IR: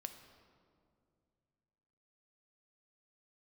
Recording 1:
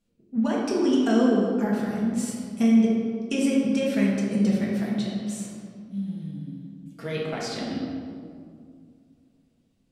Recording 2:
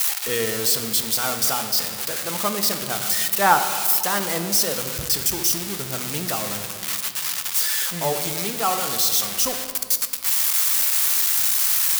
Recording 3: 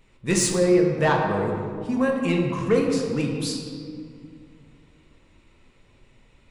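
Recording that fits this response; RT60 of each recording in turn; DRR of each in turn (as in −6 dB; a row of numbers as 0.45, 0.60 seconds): 2; 2.2, 2.3, 2.2 seconds; −5.0, 7.0, −0.5 decibels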